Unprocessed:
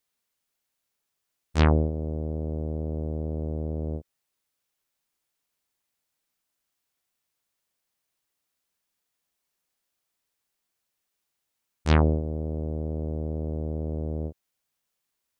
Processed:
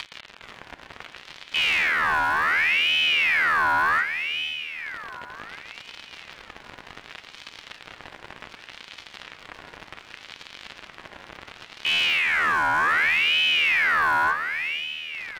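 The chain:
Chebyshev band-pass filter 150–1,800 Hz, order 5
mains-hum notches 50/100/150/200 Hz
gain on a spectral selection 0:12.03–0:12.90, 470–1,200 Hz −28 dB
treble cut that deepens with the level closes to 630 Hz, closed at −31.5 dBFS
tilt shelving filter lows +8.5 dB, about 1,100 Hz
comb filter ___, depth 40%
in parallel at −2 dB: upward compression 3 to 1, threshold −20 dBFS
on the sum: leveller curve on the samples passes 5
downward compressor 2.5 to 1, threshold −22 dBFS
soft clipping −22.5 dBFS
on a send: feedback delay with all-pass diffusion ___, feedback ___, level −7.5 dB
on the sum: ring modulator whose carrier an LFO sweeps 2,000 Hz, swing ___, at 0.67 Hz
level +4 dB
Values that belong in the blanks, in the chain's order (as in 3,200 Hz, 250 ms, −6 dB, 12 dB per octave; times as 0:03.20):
4.4 ms, 526 ms, 49%, 40%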